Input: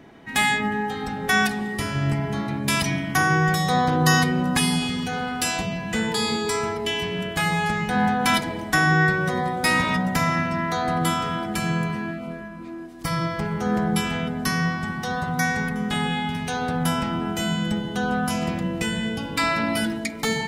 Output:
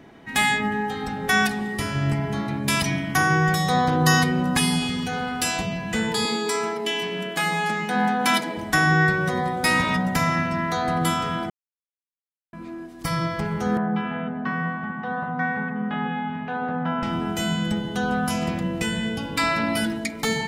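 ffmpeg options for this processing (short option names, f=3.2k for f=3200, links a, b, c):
-filter_complex "[0:a]asettb=1/sr,asplit=3[a][b][c];[a]atrim=end=6.254[d];[b]atrim=start=6.25:end=8.57,asetpts=PTS-STARTPTS,afade=t=in:d=0.004:c=qsin,afade=t=out:st=2.316:d=0.004:c=qsin,highpass=f=190:w=0.5412,highpass=f=190:w=1.3066[e];[c]atrim=start=8.566[f];[d][e]acrossfade=d=0.004:c1=hsin:c2=qsin[g];[g][f]acrossfade=d=0.004:c1=qsin:c2=hsin,asettb=1/sr,asplit=3[h][i][j];[h]atrim=end=13.774[k];[i]atrim=start=13.77:end=17.03,asetpts=PTS-STARTPTS,afade=t=in:d=0.004:c=qsin,afade=t=out:st=3.256:d=0.004:c=qsin,highpass=210,equalizer=f=220:t=q:w=4:g=4,equalizer=f=370:t=q:w=4:g=-9,equalizer=f=2.2k:t=q:w=4:g=-7,lowpass=f=2.3k:w=0.5412,lowpass=f=2.3k:w=1.3066[l];[j]atrim=start=17.026[m];[k][l]acrossfade=d=0.004:c1=hsin:c2=qsin[n];[n][m]acrossfade=d=0.004:c1=qsin:c2=hsin,asplit=3[o][p][q];[o]atrim=end=11.5,asetpts=PTS-STARTPTS,afade=t=out:st=11.496:d=0.004:c=hsin[r];[p]atrim=start=11.5:end=12.53,asetpts=PTS-STARTPTS,volume=0[s];[q]atrim=start=12.53,asetpts=PTS-STARTPTS,afade=t=in:d=0.004:c=hsin[t];[r][s][t]concat=n=3:v=0:a=1"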